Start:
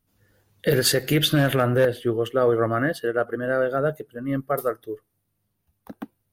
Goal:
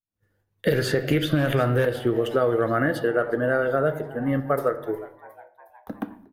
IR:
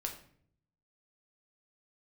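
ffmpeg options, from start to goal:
-filter_complex "[0:a]agate=range=0.0224:threshold=0.00282:ratio=3:detection=peak,asplit=5[s0][s1][s2][s3][s4];[s1]adelay=360,afreqshift=120,volume=0.0631[s5];[s2]adelay=720,afreqshift=240,volume=0.0372[s6];[s3]adelay=1080,afreqshift=360,volume=0.0219[s7];[s4]adelay=1440,afreqshift=480,volume=0.013[s8];[s0][s5][s6][s7][s8]amix=inputs=5:normalize=0,asplit=2[s9][s10];[1:a]atrim=start_sample=2205,lowpass=2900[s11];[s10][s11]afir=irnorm=-1:irlink=0,volume=0.944[s12];[s9][s12]amix=inputs=2:normalize=0,acrossover=split=2200|7500[s13][s14][s15];[s13]acompressor=threshold=0.112:ratio=4[s16];[s14]acompressor=threshold=0.02:ratio=4[s17];[s15]acompressor=threshold=0.00447:ratio=4[s18];[s16][s17][s18]amix=inputs=3:normalize=0"

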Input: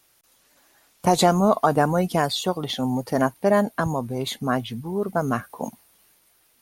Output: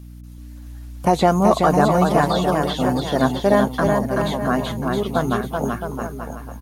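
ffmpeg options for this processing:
-filter_complex "[0:a]aeval=exprs='val(0)+0.0112*(sin(2*PI*60*n/s)+sin(2*PI*2*60*n/s)/2+sin(2*PI*3*60*n/s)/3+sin(2*PI*4*60*n/s)/4+sin(2*PI*5*60*n/s)/5)':c=same,aecho=1:1:380|665|878.8|1039|1159:0.631|0.398|0.251|0.158|0.1,acrossover=split=3200[s0][s1];[s1]acompressor=threshold=0.0141:ratio=4:attack=1:release=60[s2];[s0][s2]amix=inputs=2:normalize=0,volume=1.26"

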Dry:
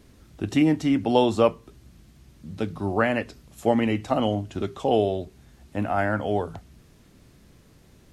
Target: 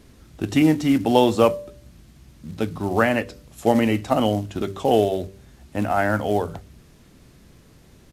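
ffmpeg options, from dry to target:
-af "bandreject=f=97.62:t=h:w=4,bandreject=f=195.24:t=h:w=4,bandreject=f=292.86:t=h:w=4,bandreject=f=390.48:t=h:w=4,bandreject=f=488.1:t=h:w=4,bandreject=f=585.72:t=h:w=4,acrusher=bits=6:mode=log:mix=0:aa=0.000001,aresample=32000,aresample=44100,volume=1.5"

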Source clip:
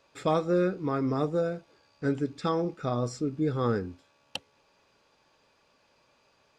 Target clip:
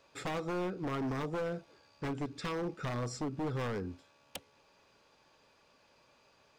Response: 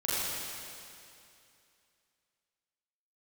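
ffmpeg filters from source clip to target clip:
-af "acompressor=threshold=0.0316:ratio=4,aeval=exprs='0.0316*(abs(mod(val(0)/0.0316+3,4)-2)-1)':c=same"

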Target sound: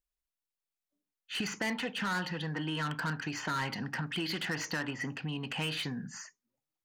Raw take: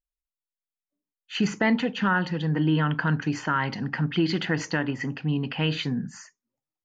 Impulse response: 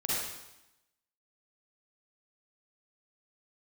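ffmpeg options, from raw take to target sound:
-filter_complex "[0:a]acrossover=split=700[s0][s1];[s0]acompressor=threshold=0.0158:ratio=6[s2];[s1]asoftclip=type=tanh:threshold=0.0266[s3];[s2][s3]amix=inputs=2:normalize=0"

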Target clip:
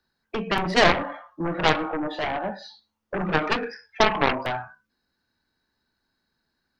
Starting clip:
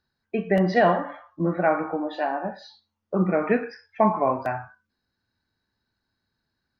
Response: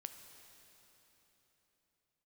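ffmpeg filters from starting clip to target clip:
-filter_complex "[0:a]equalizer=f=99:t=o:w=0.81:g=-9,bandreject=f=50:t=h:w=6,bandreject=f=100:t=h:w=6,bandreject=f=150:t=h:w=6,bandreject=f=200:t=h:w=6,acrossover=split=160|310|2700[s0][s1][s2][s3];[s1]alimiter=level_in=2.11:limit=0.0631:level=0:latency=1,volume=0.473[s4];[s0][s4][s2][s3]amix=inputs=4:normalize=0,aeval=exprs='0.422*(cos(1*acos(clip(val(0)/0.422,-1,1)))-cos(1*PI/2))+0.0596*(cos(4*acos(clip(val(0)/0.422,-1,1)))-cos(4*PI/2))+0.15*(cos(7*acos(clip(val(0)/0.422,-1,1)))-cos(7*PI/2))':c=same"

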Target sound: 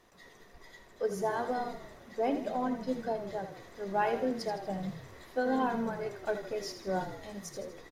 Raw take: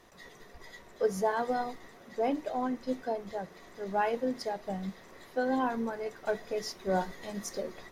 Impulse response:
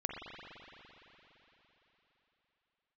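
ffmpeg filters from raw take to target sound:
-filter_complex "[0:a]dynaudnorm=f=250:g=13:m=1.58,asplit=7[s0][s1][s2][s3][s4][s5][s6];[s1]adelay=80,afreqshift=-30,volume=0.335[s7];[s2]adelay=160,afreqshift=-60,volume=0.178[s8];[s3]adelay=240,afreqshift=-90,volume=0.0944[s9];[s4]adelay=320,afreqshift=-120,volume=0.0501[s10];[s5]adelay=400,afreqshift=-150,volume=0.0263[s11];[s6]adelay=480,afreqshift=-180,volume=0.014[s12];[s0][s7][s8][s9][s10][s11][s12]amix=inputs=7:normalize=0,volume=0.596"

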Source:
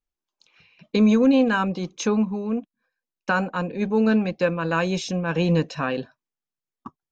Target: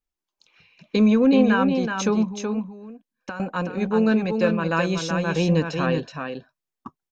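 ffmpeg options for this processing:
-filter_complex "[0:a]asettb=1/sr,asplit=3[s0][s1][s2];[s0]atrim=end=1.084[s3];[s1]atrim=start=1.08:end=1.75,asetpts=PTS-STARTPTS,afade=t=in:d=0.004:c=qsin,afade=t=out:st=0.666:d=0.004:c=qsin,lowpass=4200[s4];[s2]atrim=start=1.746[s5];[s3][s4]acrossfade=d=0.004:c1=hsin:c2=qsin[s6];[s6][s5]acrossfade=d=0.004:c1=qsin:c2=hsin,asettb=1/sr,asplit=3[s7][s8][s9];[s7]atrim=end=2.304[s10];[s8]atrim=start=2.3:end=3.4,asetpts=PTS-STARTPTS,afade=t=in:d=0.004:c=qsin,afade=t=out:st=1.096:d=0.004:c=qsin,acompressor=threshold=0.0251:ratio=6[s11];[s9]atrim=start=3.396[s12];[s10][s11]acrossfade=d=0.004:c1=hsin:c2=qsin[s13];[s13][s12]acrossfade=d=0.004:c1=qsin:c2=hsin,aecho=1:1:375:0.531"

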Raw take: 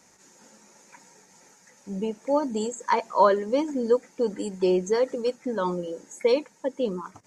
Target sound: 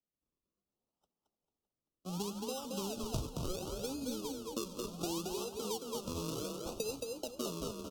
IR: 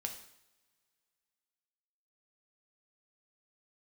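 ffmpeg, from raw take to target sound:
-filter_complex "[0:a]acompressor=threshold=0.0251:ratio=10,acrossover=split=680[s0][s1];[s0]aeval=exprs='val(0)*(1-0.7/2+0.7/2*cos(2*PI*1.9*n/s))':c=same[s2];[s1]aeval=exprs='val(0)*(1-0.7/2-0.7/2*cos(2*PI*1.9*n/s))':c=same[s3];[s2][s3]amix=inputs=2:normalize=0,agate=range=0.0126:threshold=0.00398:ratio=16:detection=peak,acrusher=samples=36:mix=1:aa=0.000001:lfo=1:lforange=36:lforate=0.75,asuperstop=centerf=2000:order=8:qfactor=1.5,asplit=2[s4][s5];[s5]asplit=4[s6][s7][s8][s9];[s6]adelay=204,afreqshift=31,volume=0.596[s10];[s7]adelay=408,afreqshift=62,volume=0.178[s11];[s8]adelay=612,afreqshift=93,volume=0.0537[s12];[s9]adelay=816,afreqshift=124,volume=0.016[s13];[s10][s11][s12][s13]amix=inputs=4:normalize=0[s14];[s4][s14]amix=inputs=2:normalize=0,acrossover=split=130|3000[s15][s16][s17];[s16]acompressor=threshold=0.00794:ratio=2[s18];[s15][s18][s17]amix=inputs=3:normalize=0,equalizer=f=100:t=o:w=0.67:g=-4,equalizer=f=2500:t=o:w=0.67:g=-4,equalizer=f=6300:t=o:w=0.67:g=5,asplit=2[s19][s20];[s20]aecho=0:1:562|1124|1686:0.133|0.056|0.0235[s21];[s19][s21]amix=inputs=2:normalize=0,asetrate=40517,aresample=44100,volume=1.26" -ar 48000 -c:a aac -b:a 64k

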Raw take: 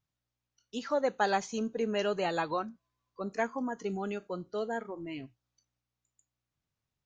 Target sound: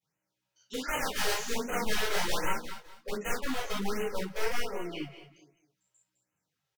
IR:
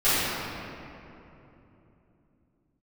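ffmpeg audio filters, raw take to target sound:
-filter_complex "[0:a]highpass=160,asplit=2[s0][s1];[s1]acompressor=threshold=0.0126:ratio=12,volume=0.841[s2];[s0][s2]amix=inputs=2:normalize=0,aeval=exprs='(mod(16.8*val(0)+1,2)-1)/16.8':c=same,flanger=delay=6.5:depth=4.8:regen=70:speed=1.9:shape=triangular,asoftclip=type=hard:threshold=0.0237,aecho=1:1:217|434|651:0.282|0.0733|0.0191[s3];[1:a]atrim=start_sample=2205,atrim=end_sample=3969,asetrate=48510,aresample=44100[s4];[s3][s4]afir=irnorm=-1:irlink=0,asetrate=45938,aresample=44100,afftfilt=real='re*(1-between(b*sr/1024,210*pow(4400/210,0.5+0.5*sin(2*PI*1.3*pts/sr))/1.41,210*pow(4400/210,0.5+0.5*sin(2*PI*1.3*pts/sr))*1.41))':imag='im*(1-between(b*sr/1024,210*pow(4400/210,0.5+0.5*sin(2*PI*1.3*pts/sr))/1.41,210*pow(4400/210,0.5+0.5*sin(2*PI*1.3*pts/sr))*1.41))':win_size=1024:overlap=0.75,volume=0.422"

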